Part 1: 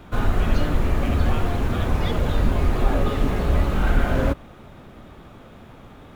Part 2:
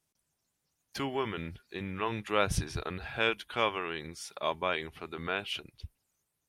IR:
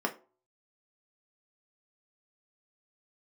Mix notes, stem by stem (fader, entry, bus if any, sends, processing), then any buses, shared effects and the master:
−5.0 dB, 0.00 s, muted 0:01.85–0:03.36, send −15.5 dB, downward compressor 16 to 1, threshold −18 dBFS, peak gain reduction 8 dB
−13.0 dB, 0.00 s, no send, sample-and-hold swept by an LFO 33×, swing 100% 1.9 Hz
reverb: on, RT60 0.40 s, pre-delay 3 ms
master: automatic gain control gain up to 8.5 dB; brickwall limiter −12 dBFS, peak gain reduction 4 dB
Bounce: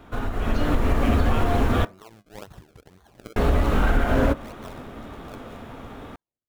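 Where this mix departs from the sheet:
stem 2 −13.0 dB → −22.5 dB
master: missing brickwall limiter −12 dBFS, peak gain reduction 4 dB

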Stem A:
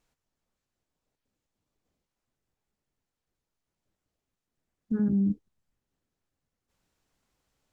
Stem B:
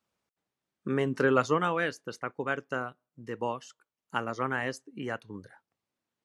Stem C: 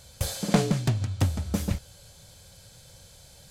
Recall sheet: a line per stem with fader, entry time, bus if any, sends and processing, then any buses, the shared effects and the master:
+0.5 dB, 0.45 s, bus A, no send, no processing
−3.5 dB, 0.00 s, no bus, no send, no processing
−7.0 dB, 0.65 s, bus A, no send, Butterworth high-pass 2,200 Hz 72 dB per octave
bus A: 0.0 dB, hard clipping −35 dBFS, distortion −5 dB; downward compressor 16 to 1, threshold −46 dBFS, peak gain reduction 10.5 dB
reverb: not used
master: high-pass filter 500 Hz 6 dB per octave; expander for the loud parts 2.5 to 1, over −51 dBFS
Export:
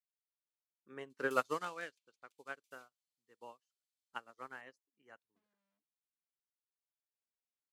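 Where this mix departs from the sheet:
stem A +0.5 dB → +11.0 dB
stem C: entry 0.65 s → 1.10 s

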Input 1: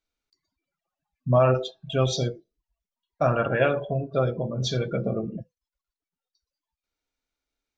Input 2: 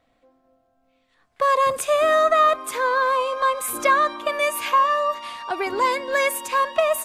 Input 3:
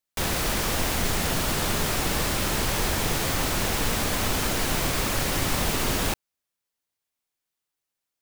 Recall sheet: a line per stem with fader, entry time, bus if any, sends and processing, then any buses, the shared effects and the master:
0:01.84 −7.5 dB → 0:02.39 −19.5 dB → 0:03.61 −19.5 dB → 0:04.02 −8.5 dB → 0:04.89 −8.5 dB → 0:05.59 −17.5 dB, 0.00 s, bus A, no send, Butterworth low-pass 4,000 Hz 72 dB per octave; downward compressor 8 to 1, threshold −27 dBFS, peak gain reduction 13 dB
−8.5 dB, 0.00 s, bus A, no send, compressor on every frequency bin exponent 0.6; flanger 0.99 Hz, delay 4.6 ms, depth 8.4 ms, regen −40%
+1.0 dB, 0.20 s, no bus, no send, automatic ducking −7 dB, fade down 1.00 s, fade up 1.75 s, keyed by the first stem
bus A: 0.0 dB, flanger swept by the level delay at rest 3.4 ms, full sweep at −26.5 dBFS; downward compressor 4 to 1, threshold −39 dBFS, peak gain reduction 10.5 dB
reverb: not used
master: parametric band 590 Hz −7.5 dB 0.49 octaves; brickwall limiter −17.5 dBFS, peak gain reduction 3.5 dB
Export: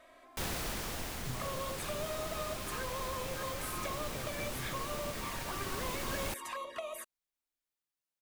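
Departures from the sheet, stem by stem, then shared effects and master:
stem 3 +1.0 dB → −9.0 dB
master: missing parametric band 590 Hz −7.5 dB 0.49 octaves

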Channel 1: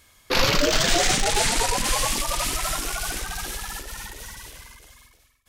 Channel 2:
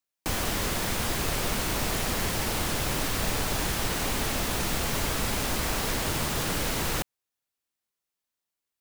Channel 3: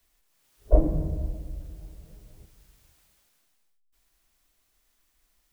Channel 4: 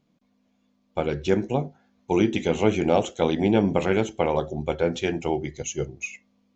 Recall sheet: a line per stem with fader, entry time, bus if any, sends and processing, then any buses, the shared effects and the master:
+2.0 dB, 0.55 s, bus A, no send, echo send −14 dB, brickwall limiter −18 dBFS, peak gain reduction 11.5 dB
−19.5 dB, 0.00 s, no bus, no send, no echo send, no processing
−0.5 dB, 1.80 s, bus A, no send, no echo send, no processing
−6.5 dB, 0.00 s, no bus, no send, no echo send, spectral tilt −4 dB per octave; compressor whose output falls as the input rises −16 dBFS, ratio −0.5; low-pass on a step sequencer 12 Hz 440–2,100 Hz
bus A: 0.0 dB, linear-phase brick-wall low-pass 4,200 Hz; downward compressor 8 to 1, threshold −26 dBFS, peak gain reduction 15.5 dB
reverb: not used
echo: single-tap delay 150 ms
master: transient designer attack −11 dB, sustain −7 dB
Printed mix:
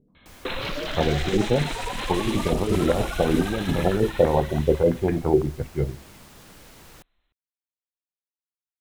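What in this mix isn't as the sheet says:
stem 1: entry 0.55 s → 0.15 s
master: missing transient designer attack −11 dB, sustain −7 dB

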